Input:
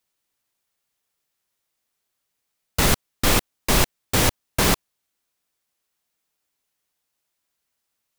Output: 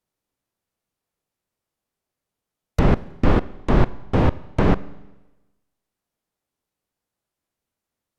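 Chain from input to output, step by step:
stylus tracing distortion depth 0.11 ms
tilt shelving filter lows +7 dB, about 740 Hz
formants moved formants +6 semitones
treble cut that deepens with the level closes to 2,300 Hz, closed at −19 dBFS
four-comb reverb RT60 1.1 s, combs from 31 ms, DRR 18 dB
level −1.5 dB

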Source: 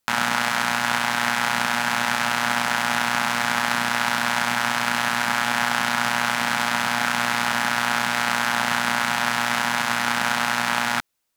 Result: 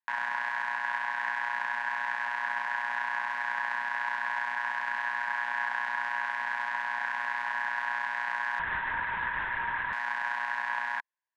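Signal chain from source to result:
pair of resonant band-passes 1,300 Hz, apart 0.72 octaves
0:08.59–0:09.93: linear-prediction vocoder at 8 kHz whisper
level −3 dB

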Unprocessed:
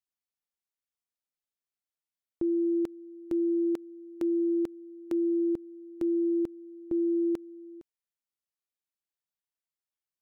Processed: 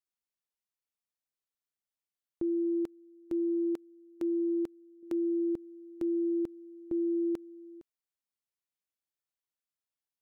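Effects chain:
0:02.63–0:05.03: expander for the loud parts 1.5 to 1, over −41 dBFS
level −3 dB

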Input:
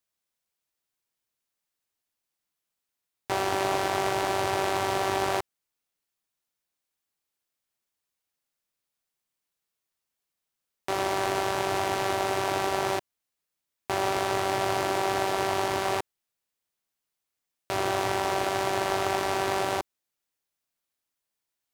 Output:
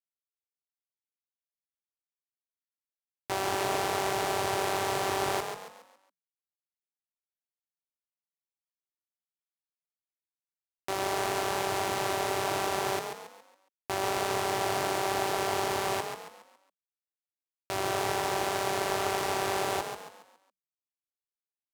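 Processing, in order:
high-shelf EQ 5,300 Hz +5.5 dB
bit reduction 8 bits
echo with shifted repeats 138 ms, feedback 40%, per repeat +36 Hz, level −6.5 dB
level −4 dB

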